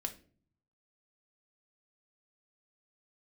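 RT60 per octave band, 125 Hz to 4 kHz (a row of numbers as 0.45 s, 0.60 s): 1.1 s, 0.75 s, 0.55 s, 0.35 s, 0.35 s, 0.30 s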